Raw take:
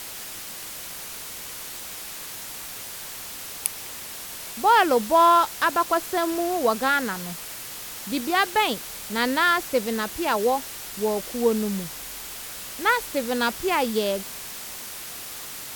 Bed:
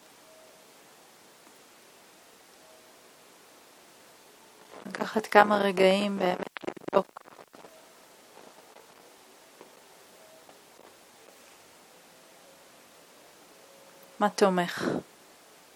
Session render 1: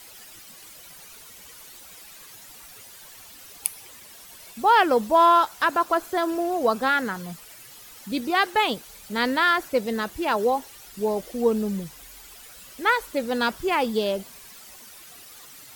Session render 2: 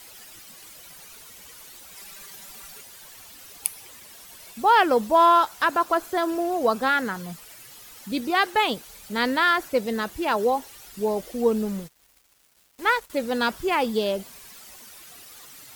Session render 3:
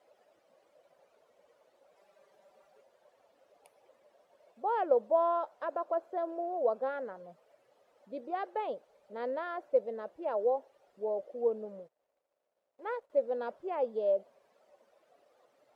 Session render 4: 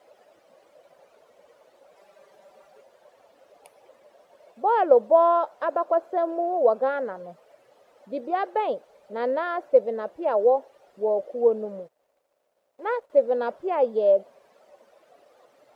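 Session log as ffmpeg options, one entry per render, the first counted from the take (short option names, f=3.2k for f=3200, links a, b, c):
-af "afftdn=nr=12:nf=-37"
-filter_complex "[0:a]asettb=1/sr,asplit=3[a][b][c];[a]atrim=end=1.954[d];[b]atrim=start=1.95:end=2.81,asetpts=PTS-STARTPTS,afade=t=in:d=0.004:c=qsin,afade=t=out:st=0.856:d=0.004:c=qsin,aecho=1:1:5.1:0.87,atrim=end_sample=37926[e];[c]atrim=start=2.806[f];[d][e]acrossfade=d=0.004:c1=hsin:c2=qsin[g];[g][f]acrossfade=d=0.004:c1=qsin:c2=hsin,asettb=1/sr,asplit=3[h][i][j];[h]atrim=end=11.654[k];[i]atrim=start=11.65:end=13.1,asetpts=PTS-STARTPTS,afade=t=in:d=0.004:c=qsin,afade=t=out:st=1.446:d=0.004:c=qsin,aeval=exprs='sgn(val(0))*max(abs(val(0))-0.00944,0)':c=same[l];[j]atrim=start=13.096[m];[k][l]acrossfade=d=0.004:c1=hsin:c2=qsin[n];[n][m]acrossfade=d=0.004:c1=qsin:c2=hsin"
-af "bandpass=f=570:t=q:w=5.5:csg=0"
-af "volume=10dB"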